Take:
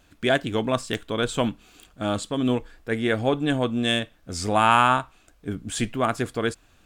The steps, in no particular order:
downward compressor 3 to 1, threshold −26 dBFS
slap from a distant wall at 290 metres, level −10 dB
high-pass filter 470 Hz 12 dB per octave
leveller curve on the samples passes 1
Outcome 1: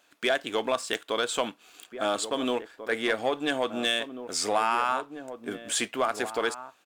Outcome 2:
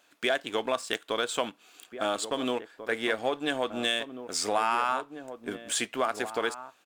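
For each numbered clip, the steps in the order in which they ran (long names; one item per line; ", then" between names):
high-pass filter, then downward compressor, then leveller curve on the samples, then slap from a distant wall
high-pass filter, then leveller curve on the samples, then downward compressor, then slap from a distant wall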